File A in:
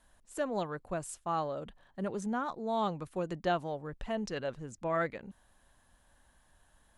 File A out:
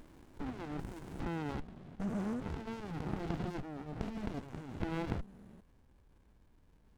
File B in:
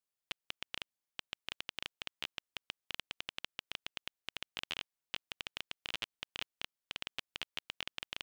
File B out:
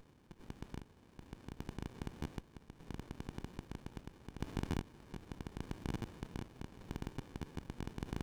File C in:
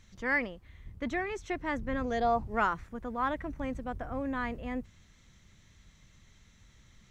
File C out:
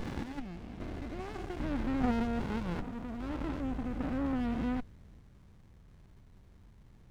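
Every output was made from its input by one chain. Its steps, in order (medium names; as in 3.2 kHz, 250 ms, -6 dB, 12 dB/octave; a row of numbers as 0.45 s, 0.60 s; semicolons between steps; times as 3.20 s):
spectrogram pixelated in time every 400 ms; sliding maximum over 65 samples; trim +5 dB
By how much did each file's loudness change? -5.0 LU, -3.0 LU, -2.5 LU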